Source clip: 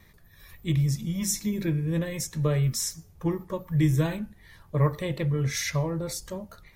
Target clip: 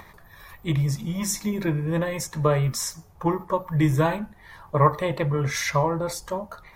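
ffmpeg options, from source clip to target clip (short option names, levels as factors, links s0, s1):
-af "acompressor=mode=upward:threshold=0.00562:ratio=2.5,equalizer=f=940:w=0.83:g=14.5"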